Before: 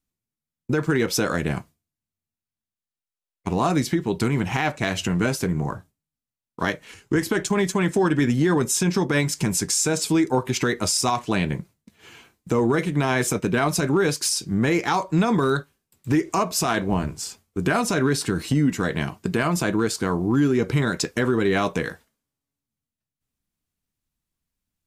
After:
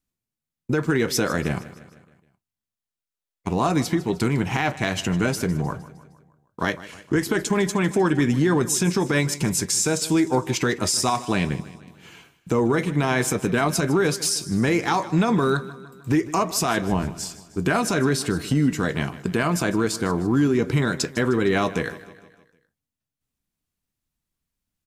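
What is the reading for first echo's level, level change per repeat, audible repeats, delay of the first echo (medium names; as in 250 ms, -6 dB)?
-17.0 dB, -5.5 dB, 4, 154 ms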